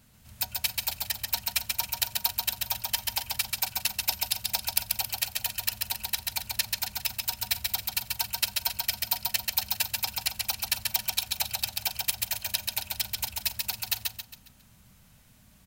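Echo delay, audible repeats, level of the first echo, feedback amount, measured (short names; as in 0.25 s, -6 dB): 0.136 s, 5, -3.0 dB, 40%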